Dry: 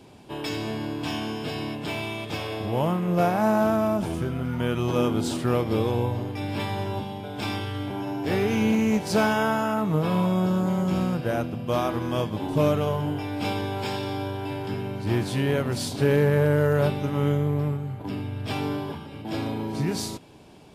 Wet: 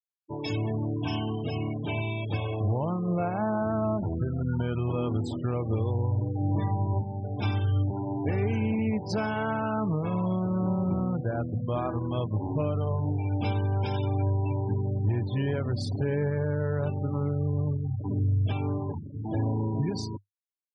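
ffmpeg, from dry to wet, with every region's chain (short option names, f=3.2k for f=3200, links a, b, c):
-filter_complex "[0:a]asettb=1/sr,asplit=3[a][b][c];[a]atrim=end=6.204[d];[b]atrim=start=6.2:end=6.93,asetpts=PTS-STARTPTS,afade=t=in:d=0.004:c=qsin,afade=t=out:st=0.726:d=0.004:c=qsin,lowpass=f=1.2k:p=1,aecho=1:1:6.2:0.76,atrim=end_sample=32193[e];[c]atrim=start=6.926[f];[d][e]acrossfade=d=0.004:c1=hsin:c2=qsin[g];[g][f]acrossfade=d=0.004:c1=qsin:c2=hsin,afftfilt=real='re*gte(hypot(re,im),0.0398)':imag='im*gte(hypot(re,im),0.0398)':win_size=1024:overlap=0.75,equalizer=f=100:t=o:w=0.51:g=12.5,alimiter=limit=-17dB:level=0:latency=1:release=439,volume=-1.5dB"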